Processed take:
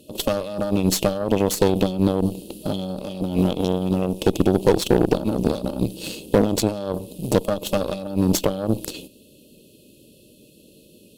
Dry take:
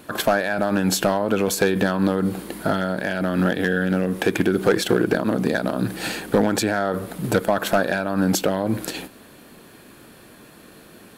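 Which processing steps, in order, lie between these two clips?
FFT band-reject 630–2500 Hz; added harmonics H 2 -11 dB, 6 -23 dB, 7 -24 dB, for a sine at -6.5 dBFS; gain +1.5 dB

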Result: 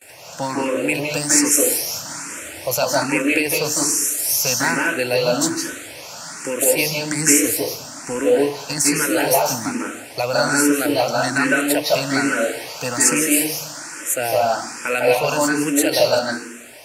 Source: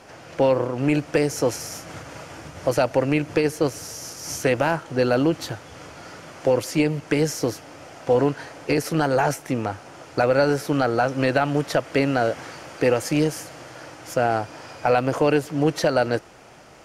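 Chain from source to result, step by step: RIAA curve recording; gate with hold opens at -37 dBFS; 7.3–8.2 low shelf 79 Hz +11.5 dB; reverb RT60 0.65 s, pre-delay 0.151 s, DRR -2 dB; endless phaser +1.2 Hz; gain +6 dB

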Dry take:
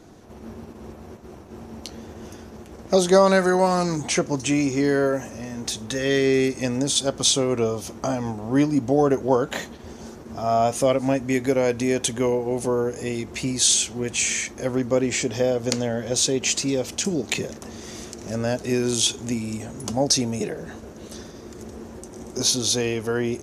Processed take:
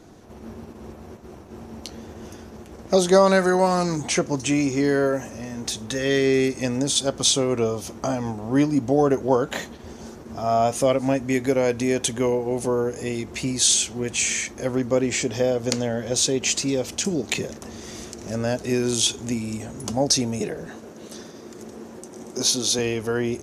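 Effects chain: 20.67–22.79 HPF 150 Hz 12 dB/oct

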